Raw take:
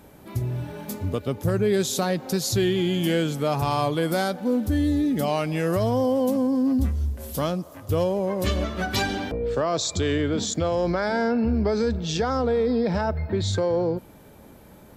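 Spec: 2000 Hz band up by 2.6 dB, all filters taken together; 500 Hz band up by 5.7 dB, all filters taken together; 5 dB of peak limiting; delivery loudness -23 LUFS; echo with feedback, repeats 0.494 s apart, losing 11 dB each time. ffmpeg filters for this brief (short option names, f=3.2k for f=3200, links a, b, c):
-af "equalizer=f=500:t=o:g=6.5,equalizer=f=2k:t=o:g=3,alimiter=limit=-13.5dB:level=0:latency=1,aecho=1:1:494|988|1482:0.282|0.0789|0.0221,volume=-0.5dB"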